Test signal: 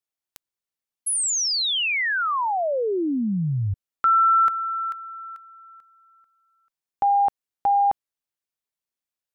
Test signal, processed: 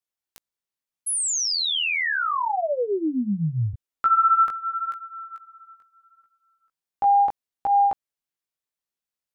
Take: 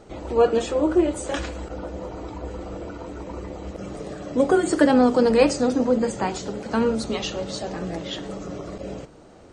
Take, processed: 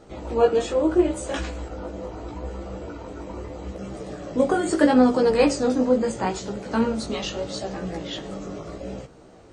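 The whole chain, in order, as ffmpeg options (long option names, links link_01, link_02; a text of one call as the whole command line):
ffmpeg -i in.wav -af "aeval=exprs='0.631*(cos(1*acos(clip(val(0)/0.631,-1,1)))-cos(1*PI/2))+0.00398*(cos(2*acos(clip(val(0)/0.631,-1,1)))-cos(2*PI/2))':channel_layout=same,flanger=delay=15:depth=4.9:speed=0.77,volume=2dB" out.wav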